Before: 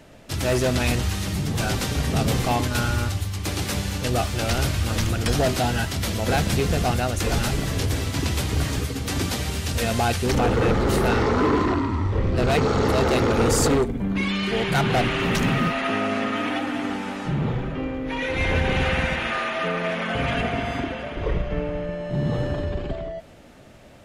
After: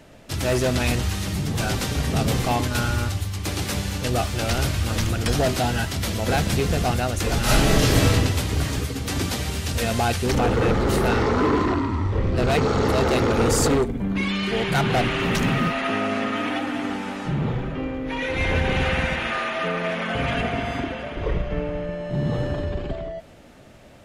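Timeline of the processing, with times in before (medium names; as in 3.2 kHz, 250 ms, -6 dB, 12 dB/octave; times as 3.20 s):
7.43–8.12 s: reverb throw, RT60 1 s, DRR -8.5 dB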